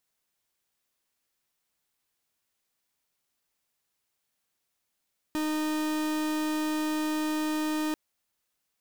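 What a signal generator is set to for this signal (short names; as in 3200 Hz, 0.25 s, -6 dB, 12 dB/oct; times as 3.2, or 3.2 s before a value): pulse 308 Hz, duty 43% -29 dBFS 2.59 s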